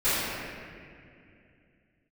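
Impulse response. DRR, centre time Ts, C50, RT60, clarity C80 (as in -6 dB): -19.5 dB, 174 ms, -4.5 dB, 2.4 s, -2.5 dB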